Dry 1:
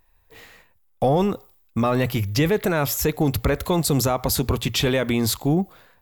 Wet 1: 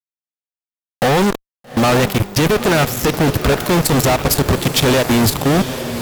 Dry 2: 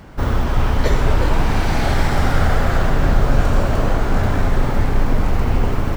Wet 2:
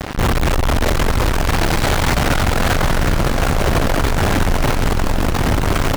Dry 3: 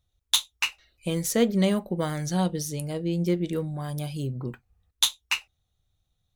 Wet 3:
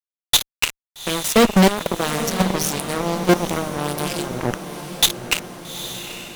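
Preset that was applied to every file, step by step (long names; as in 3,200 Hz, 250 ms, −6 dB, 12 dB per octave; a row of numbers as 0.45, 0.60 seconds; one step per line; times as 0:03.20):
output level in coarse steps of 22 dB
fuzz pedal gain 45 dB, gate −41 dBFS
feedback delay with all-pass diffusion 845 ms, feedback 58%, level −10.5 dB
normalise the peak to −6 dBFS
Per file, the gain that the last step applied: +1.0, 0.0, +3.0 decibels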